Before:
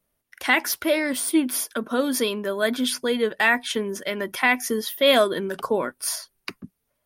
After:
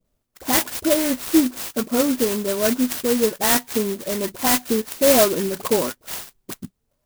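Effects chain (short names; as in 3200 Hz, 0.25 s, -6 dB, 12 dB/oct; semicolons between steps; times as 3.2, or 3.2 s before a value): tilt -1.5 dB/oct; dispersion highs, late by 55 ms, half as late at 1500 Hz; clock jitter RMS 0.13 ms; gain +2 dB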